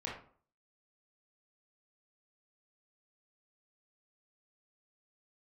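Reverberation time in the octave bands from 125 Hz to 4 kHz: 0.50, 0.50, 0.50, 0.50, 0.35, 0.30 s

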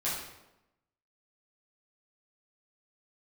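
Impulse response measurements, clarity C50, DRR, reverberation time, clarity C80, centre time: 1.5 dB, -9.5 dB, 0.95 s, 5.0 dB, 58 ms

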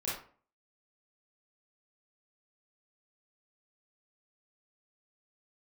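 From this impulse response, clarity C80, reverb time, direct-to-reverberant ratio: 8.0 dB, 0.45 s, -8.5 dB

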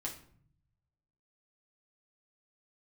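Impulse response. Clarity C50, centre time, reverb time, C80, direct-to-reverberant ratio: 9.5 dB, 19 ms, 0.55 s, 13.5 dB, -2.0 dB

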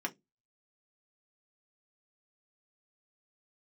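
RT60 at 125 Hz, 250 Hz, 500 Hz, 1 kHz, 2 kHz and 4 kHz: 0.30, 0.30, 0.20, 0.10, 0.15, 0.15 s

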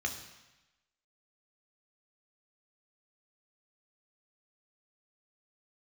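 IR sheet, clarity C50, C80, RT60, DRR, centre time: 8.5 dB, 10.5 dB, 1.0 s, 3.0 dB, 21 ms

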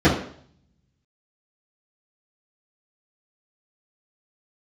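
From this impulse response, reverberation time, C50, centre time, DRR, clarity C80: 0.60 s, 5.5 dB, 35 ms, -12.5 dB, 10.0 dB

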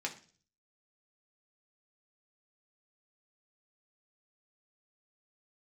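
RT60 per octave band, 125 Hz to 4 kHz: 0.75, 0.55, 0.45, 0.35, 0.40, 0.50 s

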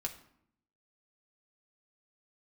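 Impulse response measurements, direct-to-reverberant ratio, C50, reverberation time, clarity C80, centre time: 1.0 dB, 12.0 dB, 0.70 s, 15.5 dB, 11 ms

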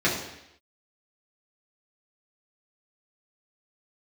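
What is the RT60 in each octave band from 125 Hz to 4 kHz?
0.75, 0.80, 0.80, 0.80, 0.90, 0.85 s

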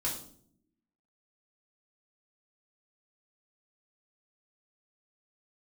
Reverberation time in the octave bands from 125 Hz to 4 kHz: 1.1, 1.1, 0.70, 0.50, 0.40, 0.45 s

